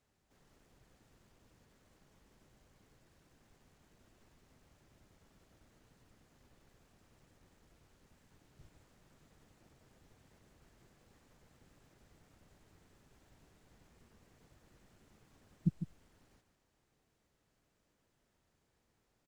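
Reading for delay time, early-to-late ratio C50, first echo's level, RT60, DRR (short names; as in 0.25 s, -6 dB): 0.151 s, none, -9.5 dB, none, none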